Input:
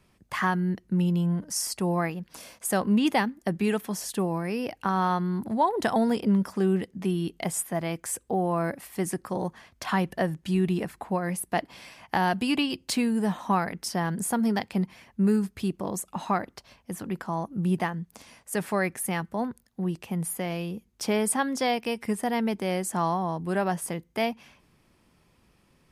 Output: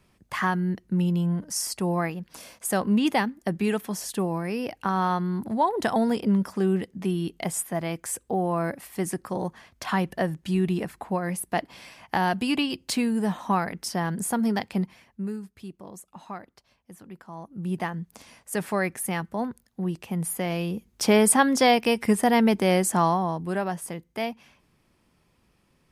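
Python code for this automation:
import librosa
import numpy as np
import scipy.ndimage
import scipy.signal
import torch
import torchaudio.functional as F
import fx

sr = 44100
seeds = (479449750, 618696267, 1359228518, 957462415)

y = fx.gain(x, sr, db=fx.line((14.79, 0.5), (15.39, -11.5), (17.27, -11.5), (17.96, 0.5), (20.05, 0.5), (21.16, 7.0), (22.82, 7.0), (23.72, -2.5)))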